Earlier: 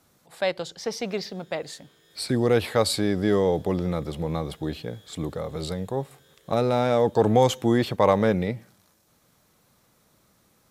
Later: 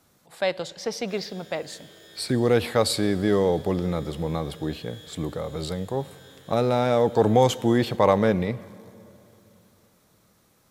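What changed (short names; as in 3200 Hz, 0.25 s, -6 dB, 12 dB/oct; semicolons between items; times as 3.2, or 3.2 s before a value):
background +8.5 dB; reverb: on, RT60 2.9 s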